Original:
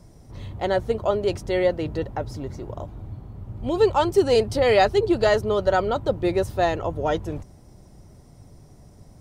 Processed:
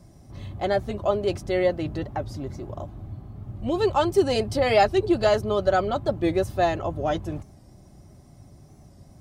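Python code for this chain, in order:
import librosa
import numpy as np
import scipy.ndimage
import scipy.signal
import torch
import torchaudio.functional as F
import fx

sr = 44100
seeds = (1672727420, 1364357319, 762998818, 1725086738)

y = fx.notch_comb(x, sr, f0_hz=470.0)
y = fx.record_warp(y, sr, rpm=45.0, depth_cents=100.0)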